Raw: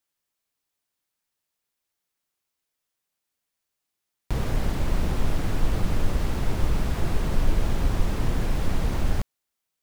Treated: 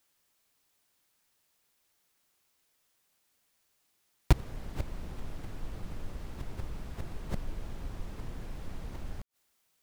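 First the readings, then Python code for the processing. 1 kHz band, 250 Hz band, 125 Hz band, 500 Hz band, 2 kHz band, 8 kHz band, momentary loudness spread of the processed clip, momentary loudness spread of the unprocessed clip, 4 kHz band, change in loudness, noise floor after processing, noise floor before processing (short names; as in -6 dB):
-11.5 dB, -12.5 dB, -10.5 dB, -12.5 dB, -12.0 dB, -12.0 dB, 15 LU, 2 LU, -11.5 dB, -11.5 dB, -75 dBFS, -83 dBFS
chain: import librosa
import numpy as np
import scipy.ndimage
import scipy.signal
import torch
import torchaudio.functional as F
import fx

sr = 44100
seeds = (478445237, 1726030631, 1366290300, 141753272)

y = fx.gate_flip(x, sr, shuts_db=-17.0, range_db=-25)
y = y * librosa.db_to_amplitude(8.5)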